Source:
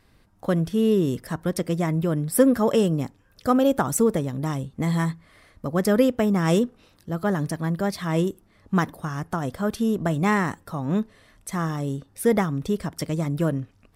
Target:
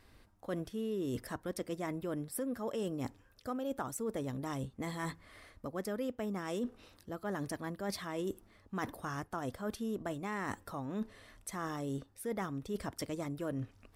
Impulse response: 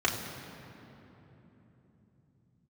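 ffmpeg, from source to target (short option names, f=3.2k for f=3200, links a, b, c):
-af "equalizer=f=160:t=o:w=0.36:g=-12.5,alimiter=limit=-12.5dB:level=0:latency=1:release=336,areverse,acompressor=threshold=-33dB:ratio=6,areverse,volume=-2dB"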